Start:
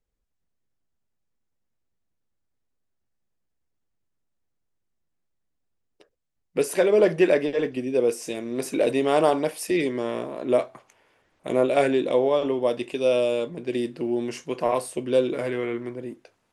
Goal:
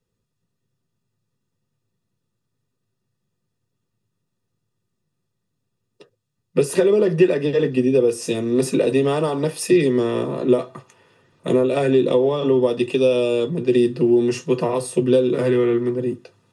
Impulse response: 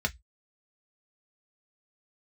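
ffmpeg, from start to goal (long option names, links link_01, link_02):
-filter_complex "[0:a]acompressor=threshold=-23dB:ratio=6[link_01];[1:a]atrim=start_sample=2205,asetrate=83790,aresample=44100[link_02];[link_01][link_02]afir=irnorm=-1:irlink=0,volume=5.5dB"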